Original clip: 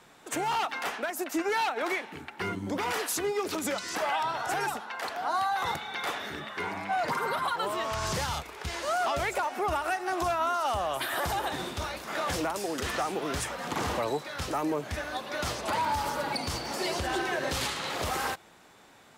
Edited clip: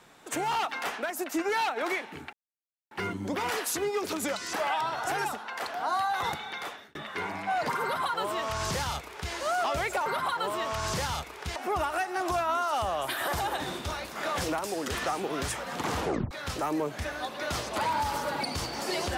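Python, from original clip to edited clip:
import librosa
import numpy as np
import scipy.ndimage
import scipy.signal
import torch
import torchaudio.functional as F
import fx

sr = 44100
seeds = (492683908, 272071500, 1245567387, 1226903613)

y = fx.edit(x, sr, fx.insert_silence(at_s=2.33, length_s=0.58),
    fx.fade_out_span(start_s=5.84, length_s=0.53),
    fx.duplicate(start_s=7.25, length_s=1.5, to_s=9.48),
    fx.tape_stop(start_s=13.92, length_s=0.31), tone=tone)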